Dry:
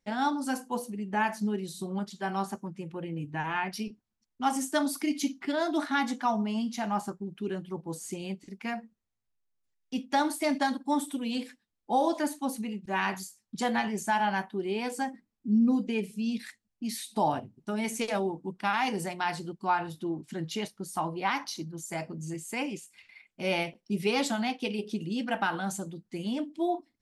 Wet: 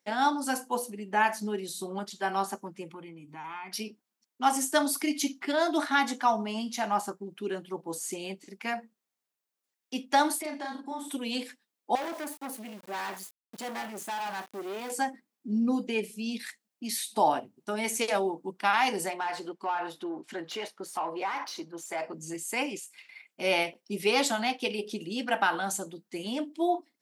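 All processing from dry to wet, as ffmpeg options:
-filter_complex "[0:a]asettb=1/sr,asplit=3[a][b][c];[a]atrim=end=2.894[d];[b]atrim=start=2.89:end=3.72,asetpts=PTS-STARTPTS,afade=t=in:d=0.004:c=qsin,afade=t=out:st=0.826:d=0.004:c=qsin,aecho=1:1:0.9:0.65,atrim=end_sample=36603,acompressor=threshold=-39dB:ratio=10:attack=3.2:release=140:knee=1:detection=peak[e];[c]atrim=start=3.716[f];[d][e]acrossfade=d=0.004:c1=hsin:c2=qsin[g];[g][f]acrossfade=d=0.004:c1=qsin:c2=hsin,asettb=1/sr,asplit=3[h][i][j];[h]atrim=end=10.414[k];[i]atrim=start=10.41:end=11.08,asetpts=PTS-STARTPTS,afade=t=in:d=0.004:c=qsin,afade=t=out:st=0.666:d=0.004:c=qsin,acompressor=threshold=-35dB:ratio=12:attack=3.2:release=140:knee=1:detection=peak,highshelf=f=7.2k:g=-12,asplit=2[l][m];[m]adelay=36,volume=-2.5dB[n];[l][n]amix=inputs=2:normalize=0,atrim=end_sample=29547[o];[j]atrim=start=11.076[p];[k][o]acrossfade=d=0.004:c1=hsin:c2=qsin[q];[q][p]acrossfade=d=0.004:c1=qsin:c2=hsin,asettb=1/sr,asplit=3[r][s][t];[r]atrim=end=11.954[u];[s]atrim=start=11.95:end=14.9,asetpts=PTS-STARTPTS,afade=t=in:d=0.004:c=qsin,afade=t=out:st=2.946:d=0.004:c=qsin,equalizer=f=5.3k:t=o:w=2.5:g=-6.5,aeval=exprs='val(0)*gte(abs(val(0)),0.00447)':c=same,aeval=exprs='(tanh(56.2*val(0)+0.45)-tanh(0.45))/56.2':c=same[v];[t]atrim=start=14.896[w];[u][v]acrossfade=d=0.004:c1=hsin:c2=qsin[x];[x][w]acrossfade=d=0.004:c1=qsin:c2=hsin,asettb=1/sr,asplit=3[y][z][aa];[y]atrim=end=19.104[ab];[z]atrim=start=19.1:end=22.14,asetpts=PTS-STARTPTS,afade=t=in:d=0.004:c=qsin,afade=t=out:st=3.036:d=0.004:c=qsin,lowshelf=f=150:g=-9.5,acompressor=threshold=-35dB:ratio=3:attack=3.2:release=140:knee=1:detection=peak,asplit=2[ac][ad];[ad]highpass=f=720:p=1,volume=15dB,asoftclip=type=tanh:threshold=-24dB[ae];[ac][ae]amix=inputs=2:normalize=0,lowpass=f=1.3k:p=1,volume=-6dB[af];[aa]atrim=start=22.136[ag];[ab][af]acrossfade=d=0.004:c1=hsin:c2=qsin[ah];[ah][ag]acrossfade=d=0.004:c1=qsin:c2=hsin,highpass=330,highshelf=f=10k:g=5.5,volume=3.5dB"

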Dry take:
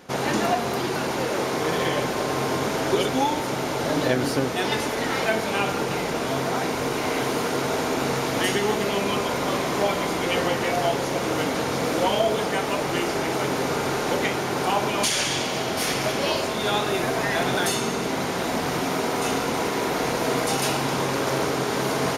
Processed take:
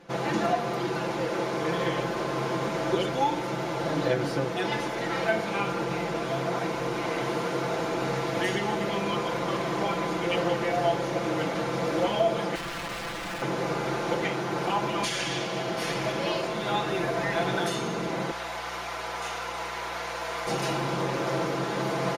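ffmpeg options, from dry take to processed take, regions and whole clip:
-filter_complex "[0:a]asettb=1/sr,asplit=3[a][b][c];[a]atrim=end=12.554[d];[b]atrim=start=12.55:end=13.42,asetpts=PTS-STARTPTS,afade=t=in:d=0.004:c=qsin,afade=t=out:st=0.866:d=0.004:c=qsin,lowpass=f=1.2k:p=1,lowshelf=f=170:t=q:w=3:g=-7,aeval=exprs='(mod(16.8*val(0)+1,2)-1)/16.8':c=same[e];[c]atrim=start=13.416[f];[d][e]acrossfade=d=0.004:c1=hsin:c2=qsin[g];[g][f]acrossfade=d=0.004:c1=qsin:c2=hsin,asettb=1/sr,asplit=3[h][i][j];[h]atrim=end=18.314[k];[i]atrim=start=18.31:end=20.47,asetpts=PTS-STARTPTS,afade=t=in:d=0.004:c=qsin,afade=t=out:st=2.156:d=0.004:c=qsin,highpass=840,aeval=exprs='val(0)+0.00708*(sin(2*PI*60*n/s)+sin(2*PI*2*60*n/s)/2+sin(2*PI*3*60*n/s)/3+sin(2*PI*4*60*n/s)/4+sin(2*PI*5*60*n/s)/5)':c=same[l];[j]atrim=start=20.466[m];[k][l]acrossfade=d=0.004:c1=hsin:c2=qsin[n];[n][m]acrossfade=d=0.004:c1=qsin:c2=hsin,aemphasis=mode=reproduction:type=50kf,aecho=1:1:5.9:0.81,volume=-5.5dB"

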